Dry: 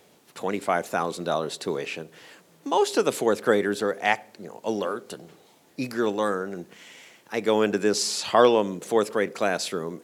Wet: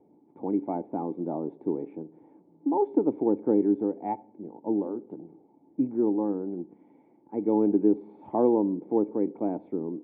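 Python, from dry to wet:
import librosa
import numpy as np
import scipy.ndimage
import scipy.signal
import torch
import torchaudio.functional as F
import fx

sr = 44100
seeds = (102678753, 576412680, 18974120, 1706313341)

y = fx.formant_cascade(x, sr, vowel='u')
y = y * librosa.db_to_amplitude(8.5)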